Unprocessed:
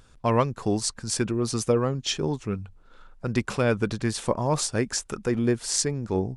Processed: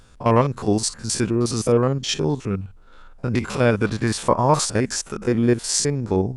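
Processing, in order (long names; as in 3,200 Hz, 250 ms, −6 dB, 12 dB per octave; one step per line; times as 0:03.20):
spectrum averaged block by block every 50 ms
0:03.83–0:04.66: dynamic equaliser 1,200 Hz, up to +7 dB, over −41 dBFS, Q 0.91
level +6 dB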